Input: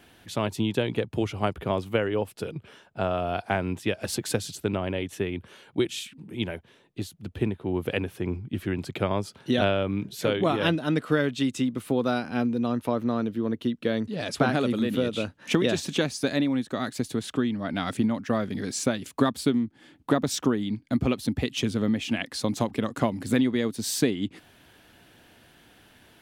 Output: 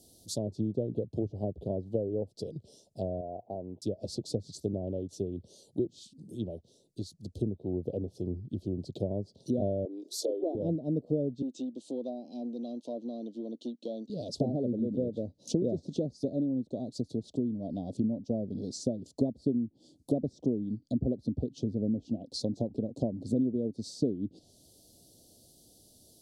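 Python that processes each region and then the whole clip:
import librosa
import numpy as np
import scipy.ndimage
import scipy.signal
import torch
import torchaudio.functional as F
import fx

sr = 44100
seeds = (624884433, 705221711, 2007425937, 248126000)

y = fx.chain(x, sr, fx.steep_lowpass(hz=1900.0, slope=36),
    fx.low_shelf(hz=330.0, db=-11.5),
    fx.hum_notches(base_hz=60, count=2), at=(3.21, 3.82))
y = fx.chain(y, sr, fx.steep_highpass(hz=300.0, slope=48),
    fx.high_shelf(hz=7100.0, db=9.5), at=(9.85, 10.55))
y = fx.chain(y, sr, fx.tube_stage(drive_db=18.0, bias=0.4),
    fx.cabinet(low_hz=250.0, low_slope=24, high_hz=7700.0, hz=(440.0, 1400.0, 2200.0, 3100.0, 5000.0), db=(-6, 6, 10, 5, -6)), at=(11.42, 14.1))
y = fx.env_lowpass_down(y, sr, base_hz=670.0, full_db=-22.5)
y = scipy.signal.sosfilt(scipy.signal.ellip(3, 1.0, 60, [620.0, 4400.0], 'bandstop', fs=sr, output='sos'), y)
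y = fx.peak_eq(y, sr, hz=8800.0, db=12.0, octaves=2.4)
y = y * 10.0 ** (-4.5 / 20.0)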